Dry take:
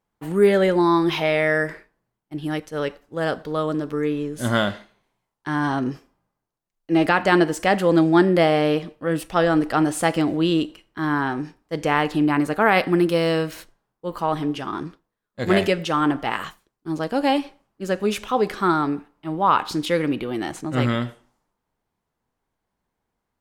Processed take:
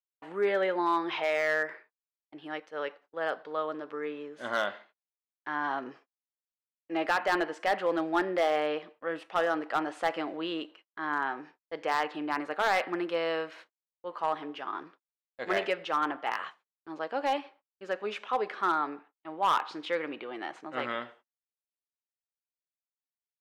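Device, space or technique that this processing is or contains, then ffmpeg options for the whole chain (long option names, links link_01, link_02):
walkie-talkie: -af "highpass=570,lowpass=2700,asoftclip=type=hard:threshold=-14.5dB,agate=range=-36dB:threshold=-50dB:ratio=16:detection=peak,volume=-5dB"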